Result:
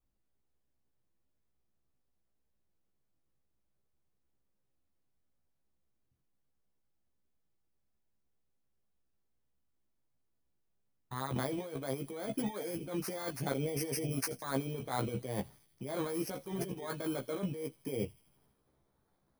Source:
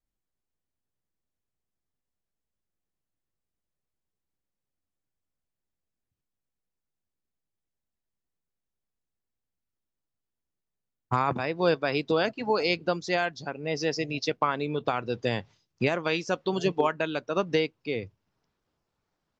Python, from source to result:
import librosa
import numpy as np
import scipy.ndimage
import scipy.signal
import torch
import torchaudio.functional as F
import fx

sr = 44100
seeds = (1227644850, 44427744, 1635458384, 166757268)

y = fx.bit_reversed(x, sr, seeds[0], block=16)
y = fx.high_shelf(y, sr, hz=2200.0, db=-8.0)
y = fx.over_compress(y, sr, threshold_db=-36.0, ratio=-1.0)
y = fx.doubler(y, sr, ms=15.0, db=-3.5)
y = fx.echo_wet_highpass(y, sr, ms=82, feedback_pct=66, hz=3100.0, wet_db=-17)
y = y * 10.0 ** (-2.5 / 20.0)